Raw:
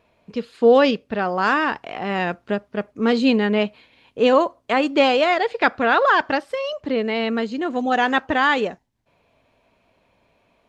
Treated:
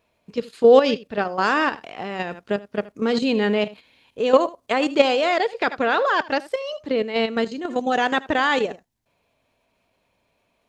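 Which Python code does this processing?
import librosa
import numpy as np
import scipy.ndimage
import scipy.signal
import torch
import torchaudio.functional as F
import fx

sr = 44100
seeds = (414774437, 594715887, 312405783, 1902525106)

y = x + 10.0 ** (-16.5 / 20.0) * np.pad(x, (int(79 * sr / 1000.0), 0))[:len(x)]
y = fx.dynamic_eq(y, sr, hz=480.0, q=1.4, threshold_db=-30.0, ratio=4.0, max_db=4)
y = fx.level_steps(y, sr, step_db=10)
y = fx.high_shelf(y, sr, hz=4900.0, db=11.0)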